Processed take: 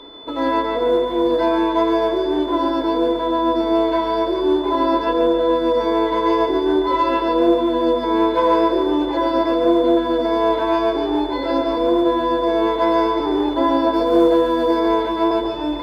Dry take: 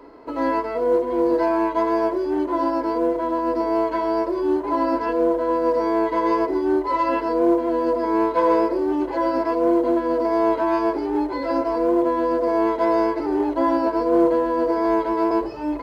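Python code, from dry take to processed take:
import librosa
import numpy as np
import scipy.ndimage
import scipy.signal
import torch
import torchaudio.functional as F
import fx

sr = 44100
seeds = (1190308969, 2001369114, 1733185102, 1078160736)

p1 = fx.high_shelf(x, sr, hz=4300.0, db=7.0, at=(13.93, 14.8))
p2 = p1 + 10.0 ** (-43.0 / 20.0) * np.sin(2.0 * np.pi * 3500.0 * np.arange(len(p1)) / sr)
p3 = p2 + fx.echo_feedback(p2, sr, ms=142, feedback_pct=53, wet_db=-8.0, dry=0)
y = p3 * 10.0 ** (2.0 / 20.0)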